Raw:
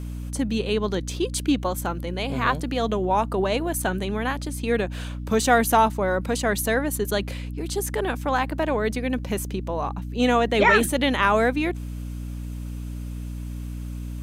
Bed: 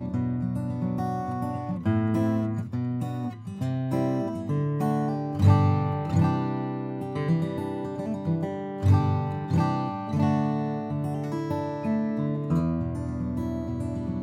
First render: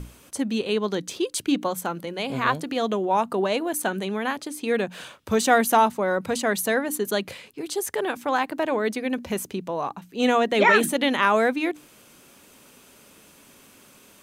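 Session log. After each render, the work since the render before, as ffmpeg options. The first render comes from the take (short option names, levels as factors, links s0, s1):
-af "bandreject=f=60:t=h:w=6,bandreject=f=120:t=h:w=6,bandreject=f=180:t=h:w=6,bandreject=f=240:t=h:w=6,bandreject=f=300:t=h:w=6"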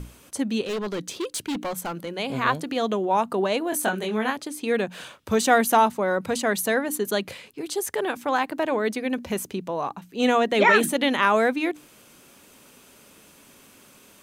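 -filter_complex "[0:a]asettb=1/sr,asplit=3[s0][s1][s2];[s0]atrim=end=0.644[s3];[s1]atrim=start=0.64:end=2.12,asetpts=PTS-STARTPTS,afade=t=in:d=0.004:c=qsin,afade=t=out:st=1.476:d=0.004:c=qsin,asoftclip=type=hard:threshold=0.0562[s4];[s2]atrim=start=2.116[s5];[s3][s4]acrossfade=d=0.004:c1=hsin:c2=qsin[s6];[s6][s5]acrossfade=d=0.004:c1=qsin:c2=hsin,asettb=1/sr,asplit=3[s7][s8][s9];[s7]atrim=end=3.704[s10];[s8]atrim=start=3.7:end=4.3,asetpts=PTS-STARTPTS,afade=t=in:d=0.004:c=qsin,afade=t=out:st=0.596:d=0.004:c=qsin,asplit=2[s11][s12];[s12]adelay=23,volume=0.668[s13];[s11][s13]amix=inputs=2:normalize=0,atrim=end_sample=26460[s14];[s9]atrim=start=4.296[s15];[s10][s14]acrossfade=d=0.004:c1=hsin:c2=qsin[s16];[s16][s15]acrossfade=d=0.004:c1=qsin:c2=hsin"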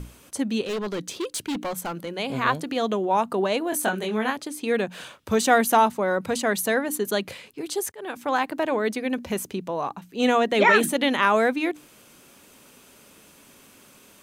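-filter_complex "[0:a]asplit=2[s0][s1];[s0]atrim=end=7.92,asetpts=PTS-STARTPTS,afade=t=out:st=7.916:d=0.004:c=hsin[s2];[s1]atrim=start=7.92,asetpts=PTS-STARTPTS,afade=t=in:d=0.49:c=qsin[s3];[s2][s3]concat=n=2:v=0:a=1"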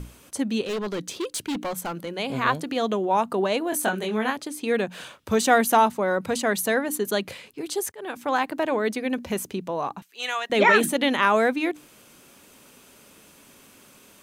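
-filter_complex "[0:a]asettb=1/sr,asplit=3[s0][s1][s2];[s0]atrim=end=10.024[s3];[s1]atrim=start=10.02:end=10.5,asetpts=PTS-STARTPTS,afade=t=in:d=0.004:c=qsin,afade=t=out:st=0.476:d=0.004:c=qsin,highpass=1300[s4];[s2]atrim=start=10.496[s5];[s3][s4]acrossfade=d=0.004:c1=hsin:c2=qsin[s6];[s6][s5]acrossfade=d=0.004:c1=qsin:c2=hsin"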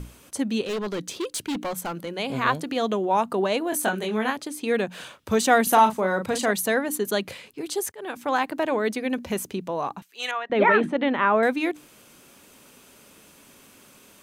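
-filter_complex "[0:a]asettb=1/sr,asplit=3[s0][s1][s2];[s0]atrim=end=5.634[s3];[s1]atrim=start=5.63:end=6.51,asetpts=PTS-STARTPTS,afade=t=in:d=0.004:c=qsin,afade=t=out:st=0.876:d=0.004:c=qsin,asplit=2[s4][s5];[s5]adelay=37,volume=0.422[s6];[s4][s6]amix=inputs=2:normalize=0,atrim=end_sample=38808[s7];[s2]atrim=start=6.506[s8];[s3][s7]acrossfade=d=0.004:c1=hsin:c2=qsin[s9];[s9][s8]acrossfade=d=0.004:c1=qsin:c2=hsin,asettb=1/sr,asplit=3[s10][s11][s12];[s10]atrim=end=10.314[s13];[s11]atrim=start=10.31:end=11.43,asetpts=PTS-STARTPTS,afade=t=in:d=0.004:c=qsin,afade=t=out:st=1.116:d=0.004:c=qsin,lowpass=1900[s14];[s12]atrim=start=11.426[s15];[s13][s14]acrossfade=d=0.004:c1=hsin:c2=qsin[s16];[s16][s15]acrossfade=d=0.004:c1=qsin:c2=hsin"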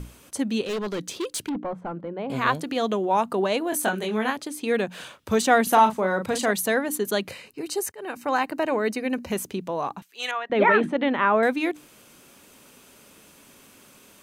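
-filter_complex "[0:a]asettb=1/sr,asplit=3[s0][s1][s2];[s0]atrim=end=1.494[s3];[s1]atrim=start=1.49:end=2.3,asetpts=PTS-STARTPTS,afade=t=in:d=0.004:c=qsin,afade=t=out:st=0.806:d=0.004:c=qsin,lowpass=1100[s4];[s2]atrim=start=2.296[s5];[s3][s4]acrossfade=d=0.004:c1=hsin:c2=qsin[s6];[s6][s5]acrossfade=d=0.004:c1=qsin:c2=hsin,asettb=1/sr,asplit=3[s7][s8][s9];[s7]atrim=end=5.424[s10];[s8]atrim=start=5.42:end=6.22,asetpts=PTS-STARTPTS,afade=t=in:d=0.004:c=qsin,afade=t=out:st=0.796:d=0.004:c=qsin,highshelf=f=6700:g=-5[s11];[s9]atrim=start=6.216[s12];[s10][s11]acrossfade=d=0.004:c1=hsin:c2=qsin[s13];[s13][s12]acrossfade=d=0.004:c1=qsin:c2=hsin,asettb=1/sr,asplit=3[s14][s15][s16];[s14]atrim=end=7.294[s17];[s15]atrim=start=7.29:end=9.31,asetpts=PTS-STARTPTS,afade=t=in:d=0.004:c=qsin,afade=t=out:st=2.016:d=0.004:c=qsin,asuperstop=centerf=3400:order=12:qfactor=7.9[s18];[s16]atrim=start=9.306[s19];[s17][s18]acrossfade=d=0.004:c1=hsin:c2=qsin[s20];[s20][s19]acrossfade=d=0.004:c1=qsin:c2=hsin"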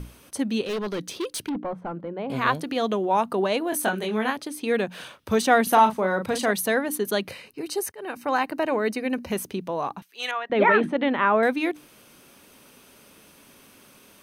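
-af "equalizer=f=7300:w=6:g=-9.5"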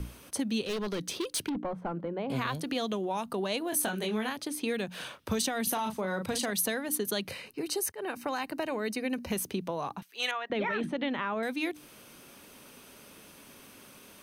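-filter_complex "[0:a]alimiter=limit=0.224:level=0:latency=1:release=22,acrossover=split=160|3000[s0][s1][s2];[s1]acompressor=threshold=0.0282:ratio=6[s3];[s0][s3][s2]amix=inputs=3:normalize=0"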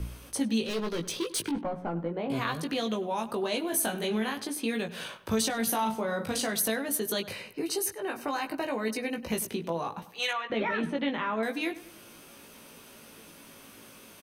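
-filter_complex "[0:a]asplit=2[s0][s1];[s1]adelay=18,volume=0.631[s2];[s0][s2]amix=inputs=2:normalize=0,asplit=2[s3][s4];[s4]adelay=99,lowpass=f=2800:p=1,volume=0.168,asplit=2[s5][s6];[s6]adelay=99,lowpass=f=2800:p=1,volume=0.47,asplit=2[s7][s8];[s8]adelay=99,lowpass=f=2800:p=1,volume=0.47,asplit=2[s9][s10];[s10]adelay=99,lowpass=f=2800:p=1,volume=0.47[s11];[s3][s5][s7][s9][s11]amix=inputs=5:normalize=0"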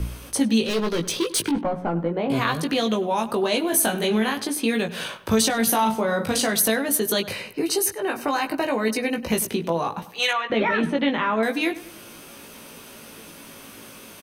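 -af "volume=2.51"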